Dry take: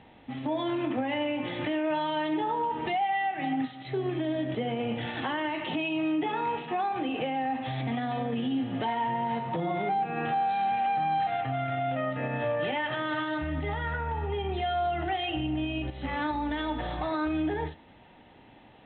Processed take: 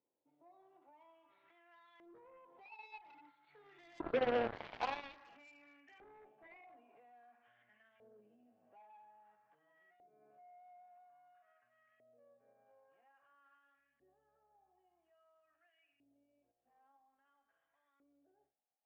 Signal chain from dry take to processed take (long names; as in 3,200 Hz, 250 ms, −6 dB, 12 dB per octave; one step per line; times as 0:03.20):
source passing by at 0:04.41, 34 m/s, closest 12 metres
auto-filter band-pass saw up 0.5 Hz 420–2,100 Hz
harmonic generator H 3 −31 dB, 7 −15 dB, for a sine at −27 dBFS
level +2.5 dB